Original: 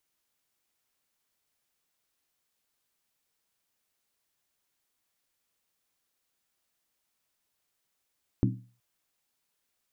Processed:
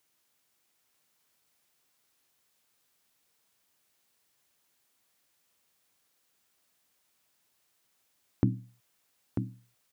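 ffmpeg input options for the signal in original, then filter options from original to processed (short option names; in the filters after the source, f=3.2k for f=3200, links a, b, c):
-f lavfi -i "aevalsrc='0.0891*pow(10,-3*t/0.4)*sin(2*PI*120*t)+0.0708*pow(10,-3*t/0.317)*sin(2*PI*191.3*t)+0.0562*pow(10,-3*t/0.274)*sin(2*PI*256.3*t)+0.0447*pow(10,-3*t/0.264)*sin(2*PI*275.5*t)+0.0355*pow(10,-3*t/0.246)*sin(2*PI*318.4*t)':d=0.37:s=44100"
-filter_complex "[0:a]highpass=75,asplit=2[a][b];[b]acompressor=threshold=-36dB:ratio=6,volume=-1dB[c];[a][c]amix=inputs=2:normalize=0,aecho=1:1:943:0.473"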